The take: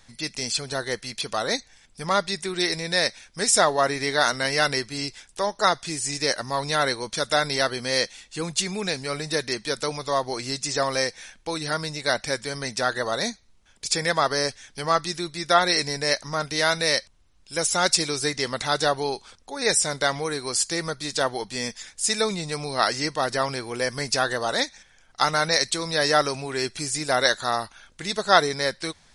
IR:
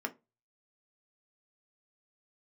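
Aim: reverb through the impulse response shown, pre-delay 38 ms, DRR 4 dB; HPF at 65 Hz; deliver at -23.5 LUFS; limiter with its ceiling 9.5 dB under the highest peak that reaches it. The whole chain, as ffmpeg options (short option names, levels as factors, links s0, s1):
-filter_complex "[0:a]highpass=65,alimiter=limit=0.282:level=0:latency=1,asplit=2[s0][s1];[1:a]atrim=start_sample=2205,adelay=38[s2];[s1][s2]afir=irnorm=-1:irlink=0,volume=0.447[s3];[s0][s3]amix=inputs=2:normalize=0,volume=1.12"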